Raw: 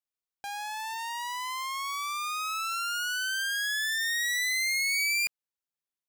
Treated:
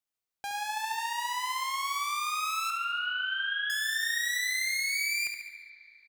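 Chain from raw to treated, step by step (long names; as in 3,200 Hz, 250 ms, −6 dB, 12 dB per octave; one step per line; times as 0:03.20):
0:02.70–0:03.70: Chebyshev low-pass filter 3,700 Hz, order 8
downward compressor, threshold −31 dBFS, peak gain reduction 6 dB
repeating echo 71 ms, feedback 51%, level −7.5 dB
convolution reverb RT60 2.9 s, pre-delay 30 ms, DRR 10 dB
level +1.5 dB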